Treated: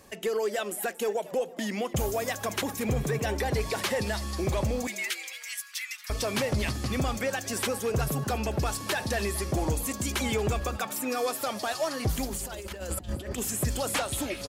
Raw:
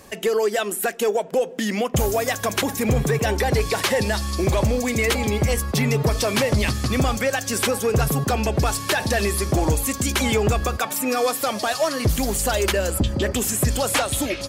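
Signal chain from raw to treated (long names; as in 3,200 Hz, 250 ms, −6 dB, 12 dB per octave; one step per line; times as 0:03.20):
0:04.87–0:06.10: Butterworth high-pass 1,500 Hz 36 dB per octave
0:12.25–0:13.38: compressor whose output falls as the input rises −26 dBFS, ratio −0.5
echo with shifted repeats 230 ms, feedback 33%, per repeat +140 Hz, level −17.5 dB
level −8 dB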